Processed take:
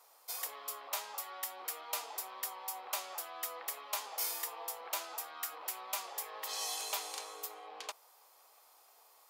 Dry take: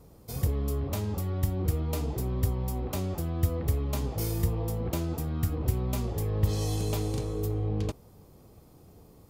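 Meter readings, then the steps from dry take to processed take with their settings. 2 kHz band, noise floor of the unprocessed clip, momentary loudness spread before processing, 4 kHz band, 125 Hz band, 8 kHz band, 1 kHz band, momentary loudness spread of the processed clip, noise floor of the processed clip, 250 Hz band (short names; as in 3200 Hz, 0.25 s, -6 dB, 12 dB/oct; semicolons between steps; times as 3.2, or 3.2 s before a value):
+2.5 dB, -55 dBFS, 4 LU, +2.5 dB, under -40 dB, +2.5 dB, +0.5 dB, 7 LU, -64 dBFS, -32.5 dB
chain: HPF 810 Hz 24 dB/oct; gain +2.5 dB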